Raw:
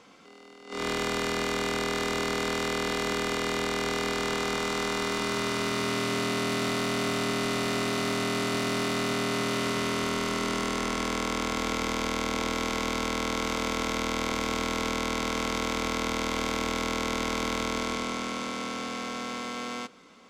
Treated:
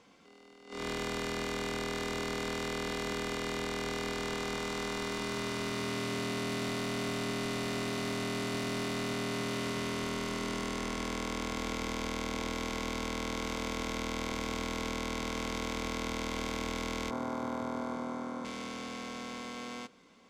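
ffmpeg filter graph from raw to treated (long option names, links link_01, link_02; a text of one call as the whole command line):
ffmpeg -i in.wav -filter_complex "[0:a]asettb=1/sr,asplit=3[link_01][link_02][link_03];[link_01]atrim=end=17.104[link_04];[link_02]atrim=start=17.1:end=18.45,asetpts=PTS-STARTPTS,afade=type=in:duration=0.004:curve=qsin,afade=type=out:start_time=1.346:duration=0.004:curve=qsin,highpass=frequency=96:width=0.5412,highpass=frequency=96:width=1.3066,highshelf=frequency=1700:width_type=q:width=1.5:gain=-12.5,asplit=2[link_05][link_06];[link_06]adelay=17,volume=-4.5dB[link_07];[link_05][link_07]amix=inputs=2:normalize=0,atrim=end_sample=59535[link_08];[link_03]atrim=start=18.446[link_09];[link_04][link_08]acrossfade=duration=0.004:curve1=hsin:curve2=qsin[link_10];[link_10][link_09]acrossfade=duration=0.004:curve1=qsin:curve2=hsin,lowshelf=frequency=160:gain=5.5,bandreject=frequency=1300:width=12,volume=-7dB" out.wav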